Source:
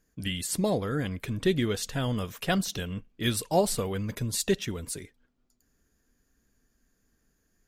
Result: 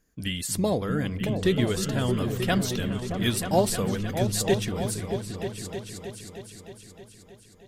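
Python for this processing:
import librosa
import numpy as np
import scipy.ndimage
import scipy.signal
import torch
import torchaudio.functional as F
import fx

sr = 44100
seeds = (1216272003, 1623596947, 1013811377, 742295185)

y = fx.echo_opening(x, sr, ms=312, hz=200, octaves=2, feedback_pct=70, wet_db=-3)
y = F.gain(torch.from_numpy(y), 1.5).numpy()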